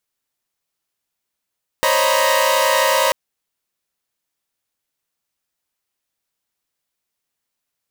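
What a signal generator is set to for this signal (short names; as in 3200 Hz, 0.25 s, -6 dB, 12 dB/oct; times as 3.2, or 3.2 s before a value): chord C5/C#5/D#5/A#5/B5 saw, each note -18 dBFS 1.29 s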